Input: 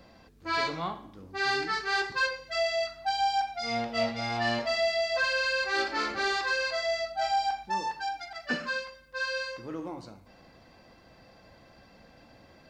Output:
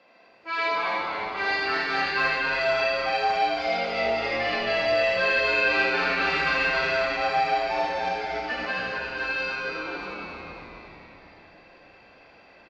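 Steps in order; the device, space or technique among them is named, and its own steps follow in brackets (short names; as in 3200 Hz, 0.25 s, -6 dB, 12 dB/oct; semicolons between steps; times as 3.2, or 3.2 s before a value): station announcement (BPF 460–3800 Hz; bell 2500 Hz +9.5 dB 0.32 oct; loudspeakers at several distances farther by 13 m -9 dB, 27 m -3 dB; reverb RT60 3.4 s, pre-delay 78 ms, DRR -0.5 dB); frequency-shifting echo 0.273 s, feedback 60%, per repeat -120 Hz, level -7 dB; gain -1.5 dB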